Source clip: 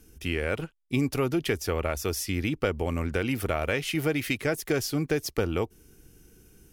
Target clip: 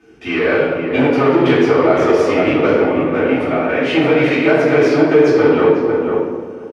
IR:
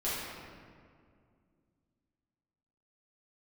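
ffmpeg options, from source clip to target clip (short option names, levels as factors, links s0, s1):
-filter_complex "[0:a]asettb=1/sr,asplit=3[s0][s1][s2];[s0]atrim=end=2.794[s3];[s1]atrim=start=2.79:end=3.85,asetpts=PTS-STARTPTS,afade=t=in:d=0.004:c=qsin,afade=t=out:st=1.056:d=0.004:c=qsin,acompressor=threshold=0.0316:ratio=6[s4];[s2]atrim=start=3.846[s5];[s3][s4]acrossfade=d=0.004:c1=hsin:c2=qsin[s6];[s6][s5]acrossfade=d=0.004:c1=qsin:c2=hsin,flanger=delay=1.6:depth=9:regen=85:speed=0.57:shape=triangular,asoftclip=type=hard:threshold=0.0422,highpass=270,lowpass=2300,asplit=2[s7][s8];[s8]adelay=495,lowpass=f=1100:p=1,volume=0.708,asplit=2[s9][s10];[s10]adelay=495,lowpass=f=1100:p=1,volume=0.18,asplit=2[s11][s12];[s12]adelay=495,lowpass=f=1100:p=1,volume=0.18[s13];[s7][s9][s11][s13]amix=inputs=4:normalize=0[s14];[1:a]atrim=start_sample=2205,asetrate=83790,aresample=44100[s15];[s14][s15]afir=irnorm=-1:irlink=0,alimiter=level_in=11.9:limit=0.891:release=50:level=0:latency=1,volume=0.891"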